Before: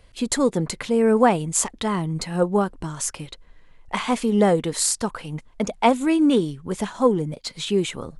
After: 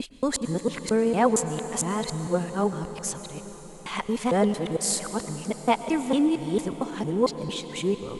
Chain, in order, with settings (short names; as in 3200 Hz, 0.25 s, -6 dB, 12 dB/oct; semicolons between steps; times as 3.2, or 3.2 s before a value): local time reversal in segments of 0.227 s; reverb RT60 5.6 s, pre-delay 96 ms, DRR 9.5 dB; gain -4.5 dB